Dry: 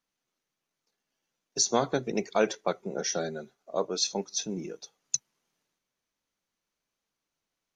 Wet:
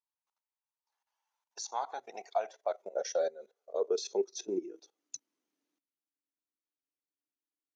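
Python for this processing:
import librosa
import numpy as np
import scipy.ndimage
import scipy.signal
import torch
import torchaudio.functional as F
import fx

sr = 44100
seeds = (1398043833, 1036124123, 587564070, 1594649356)

y = fx.level_steps(x, sr, step_db=17)
y = fx.filter_sweep_highpass(y, sr, from_hz=900.0, to_hz=290.0, start_s=1.6, end_s=5.19, q=7.2)
y = y * librosa.db_to_amplitude(-6.0)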